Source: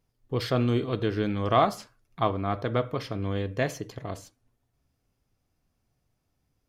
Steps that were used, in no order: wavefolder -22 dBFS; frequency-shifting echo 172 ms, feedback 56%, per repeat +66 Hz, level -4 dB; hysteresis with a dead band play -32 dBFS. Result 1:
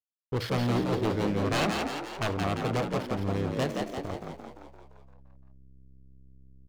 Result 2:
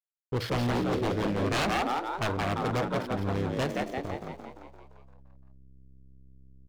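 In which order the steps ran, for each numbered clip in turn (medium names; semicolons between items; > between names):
hysteresis with a dead band > wavefolder > frequency-shifting echo; hysteresis with a dead band > frequency-shifting echo > wavefolder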